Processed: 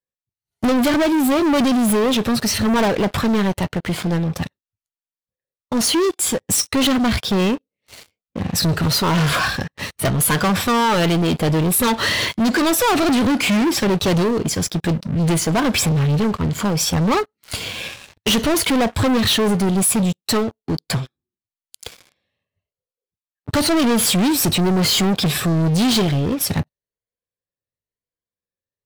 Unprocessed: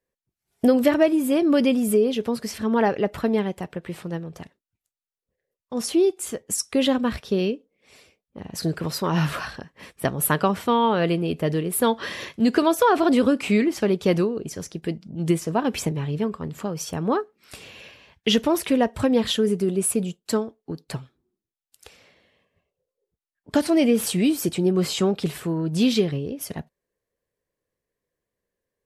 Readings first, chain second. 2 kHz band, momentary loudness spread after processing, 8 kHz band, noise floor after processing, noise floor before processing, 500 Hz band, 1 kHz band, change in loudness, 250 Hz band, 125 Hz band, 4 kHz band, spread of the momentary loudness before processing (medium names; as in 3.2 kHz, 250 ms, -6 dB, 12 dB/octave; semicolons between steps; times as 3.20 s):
+8.5 dB, 9 LU, +9.5 dB, under -85 dBFS, under -85 dBFS, +1.0 dB, +5.0 dB, +4.5 dB, +4.5 dB, +8.5 dB, +10.0 dB, 14 LU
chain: drifting ripple filter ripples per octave 1.8, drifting +0.95 Hz, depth 7 dB; saturation -10.5 dBFS, distortion -21 dB; fifteen-band graphic EQ 100 Hz +8 dB, 400 Hz -4 dB, 4 kHz +5 dB; waveshaping leveller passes 5; trim -4 dB